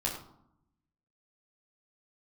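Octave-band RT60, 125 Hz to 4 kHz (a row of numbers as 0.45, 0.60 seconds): 1.2, 1.1, 0.70, 0.75, 0.45, 0.40 seconds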